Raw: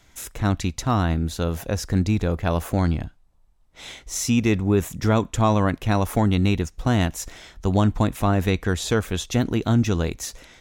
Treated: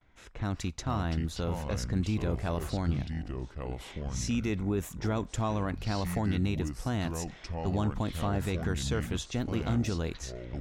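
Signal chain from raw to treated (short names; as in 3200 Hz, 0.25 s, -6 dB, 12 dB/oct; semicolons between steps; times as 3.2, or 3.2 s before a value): gate with hold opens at -49 dBFS; low-pass opened by the level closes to 2100 Hz, open at -19 dBFS; limiter -12 dBFS, peak gain reduction 4.5 dB; echoes that change speed 0.317 s, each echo -5 st, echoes 2, each echo -6 dB; gain -8 dB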